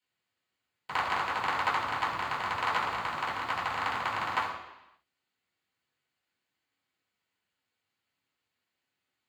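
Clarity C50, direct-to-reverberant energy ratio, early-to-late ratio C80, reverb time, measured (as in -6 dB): 5.0 dB, -6.5 dB, 6.5 dB, 0.90 s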